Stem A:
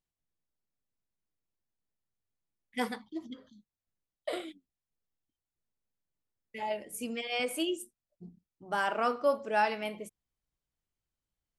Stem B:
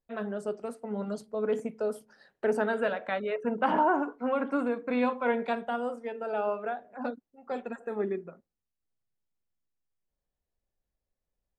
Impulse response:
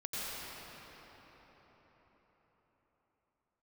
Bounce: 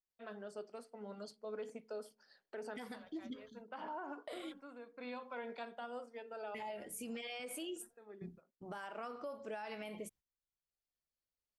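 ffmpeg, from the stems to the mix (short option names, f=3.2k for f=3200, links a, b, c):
-filter_complex "[0:a]agate=range=-15dB:threshold=-59dB:ratio=16:detection=peak,acompressor=threshold=-37dB:ratio=4,volume=0dB,asplit=2[a][b];[1:a]highpass=f=350:p=1,equalizer=f=4.3k:t=o:w=0.66:g=13.5,bandreject=f=3.9k:w=7.4,adelay=100,volume=-11dB[c];[b]apad=whole_len=515352[d];[c][d]sidechaincompress=threshold=-56dB:ratio=4:attack=25:release=723[e];[a][e]amix=inputs=2:normalize=0,alimiter=level_in=12dB:limit=-24dB:level=0:latency=1:release=88,volume=-12dB"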